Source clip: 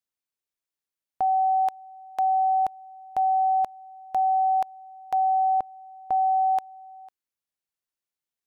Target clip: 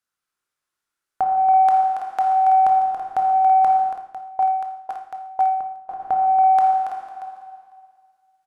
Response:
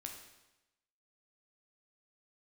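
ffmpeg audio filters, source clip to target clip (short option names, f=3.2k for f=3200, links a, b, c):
-filter_complex "[0:a]equalizer=f=1.4k:t=o:w=0.6:g=11.5,aecho=1:1:280|330|632:0.376|0.251|0.158[a];[1:a]atrim=start_sample=2205,asetrate=23814,aresample=44100[b];[a][b]afir=irnorm=-1:irlink=0,acontrast=54,asettb=1/sr,asplit=3[c][d][e];[c]atrim=end=3.894[f];[d]atrim=start=3.89:end=6,asetpts=PTS-STARTPTS,afade=t=in:d=0.004:c=qsin,afade=t=out:st=2.106:d=0.004:c=qsin,aeval=exprs='val(0)*pow(10,-24*if(lt(mod(2*n/s,1),2*abs(2)/1000),1-mod(2*n/s,1)/(2*abs(2)/1000),(mod(2*n/s,1)-2*abs(2)/1000)/(1-2*abs(2)/1000))/20)':c=same[g];[e]atrim=start=5.996[h];[f][g]acrossfade=d=0.004:c1=hsin:c2=qsin[i];[i][h]acrossfade=d=0.004:c1=qsin:c2=hsin"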